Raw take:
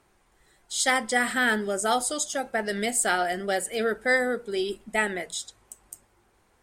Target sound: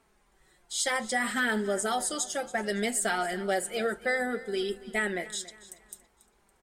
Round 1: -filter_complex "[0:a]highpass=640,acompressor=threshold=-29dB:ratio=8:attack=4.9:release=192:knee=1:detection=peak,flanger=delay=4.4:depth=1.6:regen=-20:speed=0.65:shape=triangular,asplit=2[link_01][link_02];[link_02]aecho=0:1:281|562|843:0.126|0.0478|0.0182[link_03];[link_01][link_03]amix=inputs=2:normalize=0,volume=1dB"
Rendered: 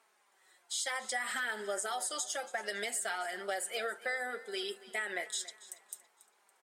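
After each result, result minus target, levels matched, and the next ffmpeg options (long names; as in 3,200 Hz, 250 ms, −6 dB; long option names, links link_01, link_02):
downward compressor: peak gain reduction +6.5 dB; 500 Hz band −2.5 dB
-filter_complex "[0:a]highpass=640,acompressor=threshold=-20.5dB:ratio=8:attack=4.9:release=192:knee=1:detection=peak,flanger=delay=4.4:depth=1.6:regen=-20:speed=0.65:shape=triangular,asplit=2[link_01][link_02];[link_02]aecho=0:1:281|562|843:0.126|0.0478|0.0182[link_03];[link_01][link_03]amix=inputs=2:normalize=0,volume=1dB"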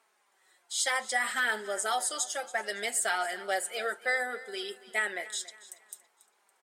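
500 Hz band −4.0 dB
-filter_complex "[0:a]acompressor=threshold=-20.5dB:ratio=8:attack=4.9:release=192:knee=1:detection=peak,flanger=delay=4.4:depth=1.6:regen=-20:speed=0.65:shape=triangular,asplit=2[link_01][link_02];[link_02]aecho=0:1:281|562|843:0.126|0.0478|0.0182[link_03];[link_01][link_03]amix=inputs=2:normalize=0,volume=1dB"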